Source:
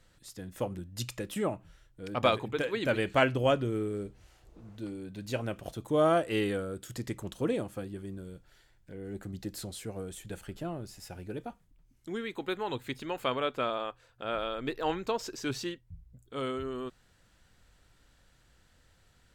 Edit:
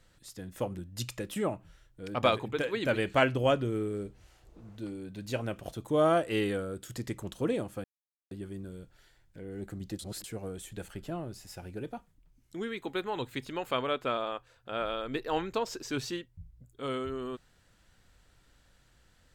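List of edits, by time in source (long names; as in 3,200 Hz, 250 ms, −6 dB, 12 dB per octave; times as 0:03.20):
0:07.84: splice in silence 0.47 s
0:09.52–0:09.77: reverse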